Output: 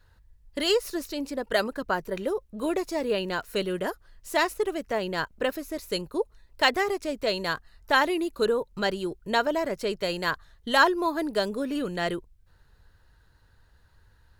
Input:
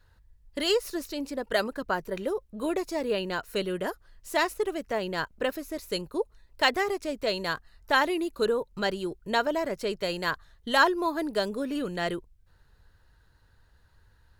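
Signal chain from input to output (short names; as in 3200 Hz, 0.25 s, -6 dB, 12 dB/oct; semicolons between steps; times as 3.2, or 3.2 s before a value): 2.58–3.78 crackle 69/s -44 dBFS; gain +1.5 dB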